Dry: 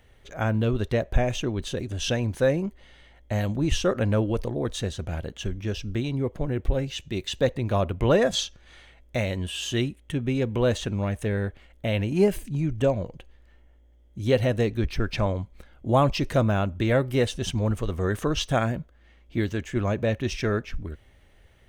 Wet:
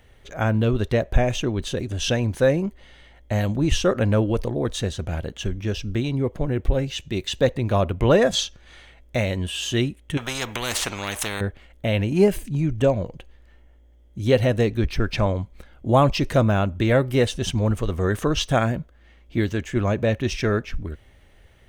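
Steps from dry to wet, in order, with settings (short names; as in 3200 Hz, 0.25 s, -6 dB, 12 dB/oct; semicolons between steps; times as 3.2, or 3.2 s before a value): 10.17–11.41 spectral compressor 4:1; gain +3.5 dB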